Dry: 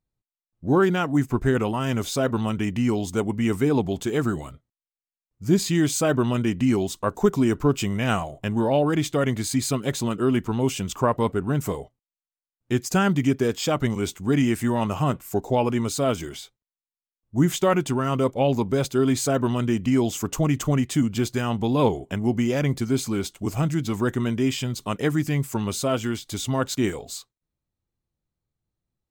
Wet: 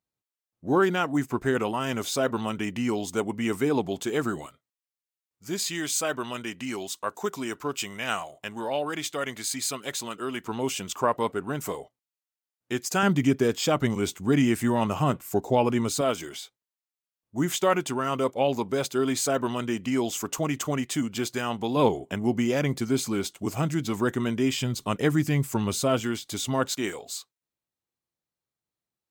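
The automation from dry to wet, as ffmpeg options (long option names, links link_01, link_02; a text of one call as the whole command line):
ffmpeg -i in.wav -af "asetnsamples=nb_out_samples=441:pad=0,asendcmd='4.46 highpass f 1200;10.44 highpass f 510;13.03 highpass f 120;16.01 highpass f 440;21.76 highpass f 200;24.58 highpass f 55;26 highpass f 200;26.74 highpass f 600',highpass=frequency=350:poles=1" out.wav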